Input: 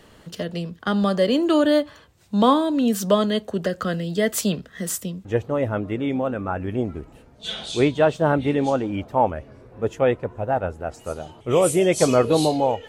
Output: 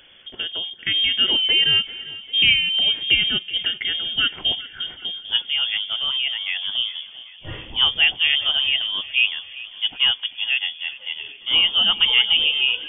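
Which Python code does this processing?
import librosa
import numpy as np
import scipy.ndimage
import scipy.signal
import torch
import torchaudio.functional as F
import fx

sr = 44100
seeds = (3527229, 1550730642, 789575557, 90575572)

p1 = fx.freq_invert(x, sr, carrier_hz=3400)
y = p1 + fx.echo_feedback(p1, sr, ms=395, feedback_pct=57, wet_db=-17.5, dry=0)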